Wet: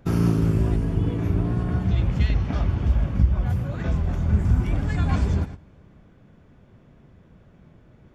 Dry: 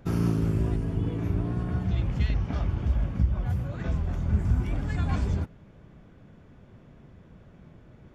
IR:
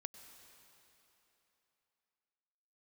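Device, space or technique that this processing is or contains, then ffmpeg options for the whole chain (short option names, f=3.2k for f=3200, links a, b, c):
keyed gated reverb: -filter_complex "[0:a]asplit=3[a][b][c];[1:a]atrim=start_sample=2205[d];[b][d]afir=irnorm=-1:irlink=0[e];[c]apad=whole_len=359323[f];[e][f]sidechaingate=range=-17dB:threshold=-40dB:ratio=16:detection=peak,volume=6dB[g];[a][g]amix=inputs=2:normalize=0,volume=-2dB"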